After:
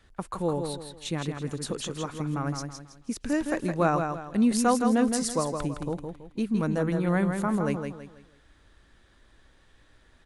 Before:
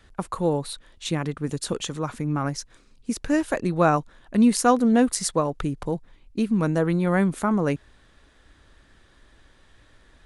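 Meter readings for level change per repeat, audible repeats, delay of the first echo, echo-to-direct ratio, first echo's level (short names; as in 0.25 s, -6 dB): -9.5 dB, 4, 0.163 s, -5.5 dB, -6.0 dB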